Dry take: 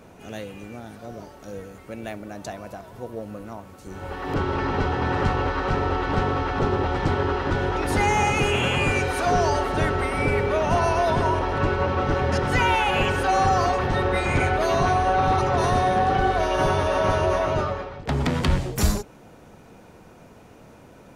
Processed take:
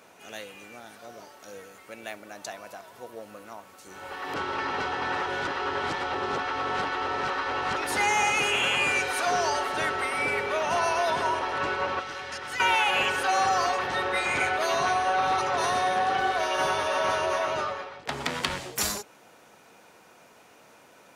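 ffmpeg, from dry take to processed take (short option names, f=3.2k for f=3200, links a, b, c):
-filter_complex "[0:a]asettb=1/sr,asplit=3[a][b][c];[a]atrim=end=11.994[d];[b]atrim=start=11.99:end=12.6,asetpts=PTS-STARTPTS,afade=t=in:d=0.004:c=qsin,afade=t=out:st=0.606:d=0.004:c=qsin,acrossover=split=84|1300|3700[e][f][g][h];[e]acompressor=threshold=-38dB:ratio=3[i];[f]acompressor=threshold=-37dB:ratio=3[j];[g]acompressor=threshold=-39dB:ratio=3[k];[h]acompressor=threshold=-45dB:ratio=3[l];[i][j][k][l]amix=inputs=4:normalize=0[m];[c]atrim=start=12.596[n];[d][m]acrossfade=d=0.004:c1=hsin:c2=qsin[o];[o][n]acrossfade=d=0.004:c1=qsin:c2=hsin,asplit=3[p][q][r];[p]atrim=end=5.222[s];[q]atrim=start=5.218:end=7.762,asetpts=PTS-STARTPTS,areverse[t];[r]atrim=start=7.758[u];[s][t]acrossfade=d=0.004:c1=hsin:c2=hsin[v];[v][u]acrossfade=d=0.004:c1=hsin:c2=hsin,highpass=f=1.3k:p=1,volume=2dB"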